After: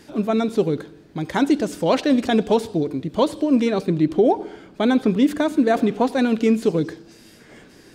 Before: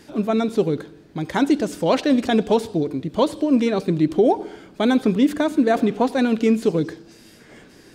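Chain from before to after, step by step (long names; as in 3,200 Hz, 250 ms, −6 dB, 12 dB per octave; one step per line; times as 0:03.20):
0:03.86–0:05.17: high-shelf EQ 5,400 Hz −5.5 dB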